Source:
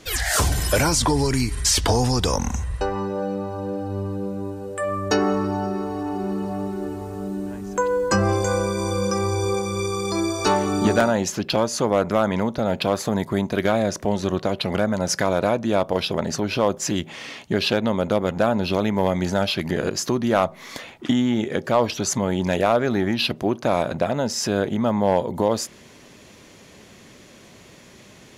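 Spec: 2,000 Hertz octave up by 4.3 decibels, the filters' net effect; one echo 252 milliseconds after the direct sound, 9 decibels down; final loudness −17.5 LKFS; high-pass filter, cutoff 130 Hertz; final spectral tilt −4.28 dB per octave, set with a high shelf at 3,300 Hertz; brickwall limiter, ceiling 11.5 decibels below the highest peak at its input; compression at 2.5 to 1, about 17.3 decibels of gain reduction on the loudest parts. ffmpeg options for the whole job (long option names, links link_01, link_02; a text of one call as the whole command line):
ffmpeg -i in.wav -af "highpass=130,equalizer=frequency=2000:width_type=o:gain=7.5,highshelf=frequency=3300:gain=-5.5,acompressor=threshold=-41dB:ratio=2.5,alimiter=level_in=6.5dB:limit=-24dB:level=0:latency=1,volume=-6.5dB,aecho=1:1:252:0.355,volume=22.5dB" out.wav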